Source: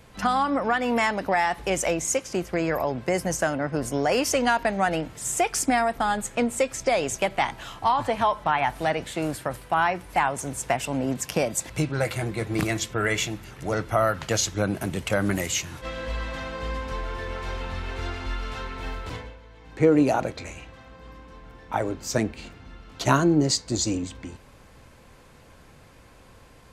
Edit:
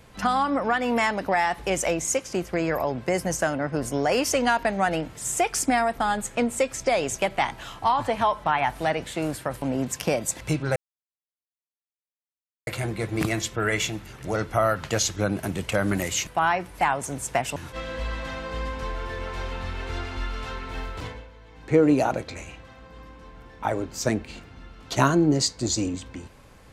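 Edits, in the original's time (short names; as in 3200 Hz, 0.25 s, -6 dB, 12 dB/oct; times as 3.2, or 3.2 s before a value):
9.62–10.91 move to 15.65
12.05 insert silence 1.91 s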